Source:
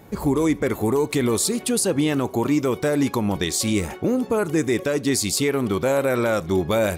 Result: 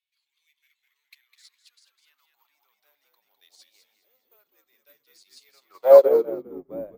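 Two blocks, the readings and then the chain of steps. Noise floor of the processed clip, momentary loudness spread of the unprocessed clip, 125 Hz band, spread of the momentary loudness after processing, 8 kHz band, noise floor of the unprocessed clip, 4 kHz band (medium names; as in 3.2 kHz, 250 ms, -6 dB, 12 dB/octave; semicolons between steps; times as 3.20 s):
-80 dBFS, 2 LU, under -30 dB, 22 LU, under -30 dB, -39 dBFS, -23.5 dB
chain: dynamic bell 3.4 kHz, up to -6 dB, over -47 dBFS, Q 3; in parallel at -4.5 dB: saturation -23 dBFS, distortion -9 dB; on the sum: high-pass sweep 2.5 kHz -> 550 Hz, 0.55–3.48 s; careless resampling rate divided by 3×, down filtered, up zero stuff; band-pass sweep 3.7 kHz -> 280 Hz, 5.46–6.12 s; on a send: frequency-shifting echo 205 ms, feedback 40%, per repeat -95 Hz, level -4 dB; on the sum: upward expansion 2.5:1, over -35 dBFS; trim +4.5 dB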